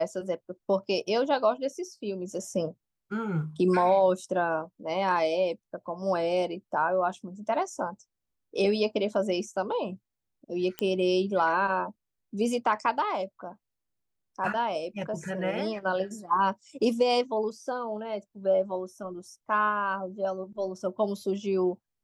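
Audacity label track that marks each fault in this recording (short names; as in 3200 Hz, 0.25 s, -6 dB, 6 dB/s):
10.790000	10.790000	pop -15 dBFS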